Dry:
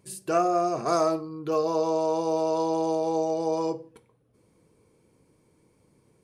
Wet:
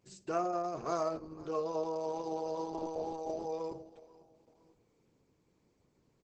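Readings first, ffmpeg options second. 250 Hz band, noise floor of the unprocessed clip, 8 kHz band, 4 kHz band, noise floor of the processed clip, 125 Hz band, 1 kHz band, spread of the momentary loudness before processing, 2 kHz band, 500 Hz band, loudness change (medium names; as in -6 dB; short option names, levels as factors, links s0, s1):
-12.0 dB, -65 dBFS, -13.0 dB, -12.0 dB, -74 dBFS, -10.5 dB, -10.5 dB, 5 LU, no reading, -11.0 dB, -11.0 dB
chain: -af "aecho=1:1:501|1002:0.0891|0.0276,volume=0.376" -ar 48000 -c:a libopus -b:a 10k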